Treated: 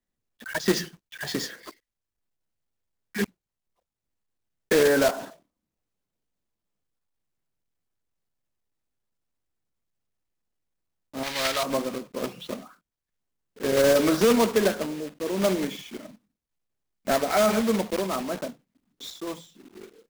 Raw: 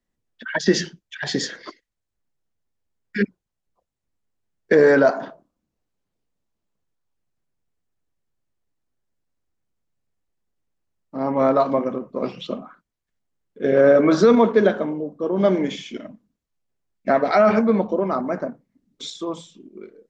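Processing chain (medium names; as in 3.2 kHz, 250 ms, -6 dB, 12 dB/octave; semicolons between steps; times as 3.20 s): block-companded coder 3-bit; 11.23–11.63 s: graphic EQ 125/250/500/1000/2000/4000 Hz -6/-11/-5/-5/+8/+8 dB; trim -6 dB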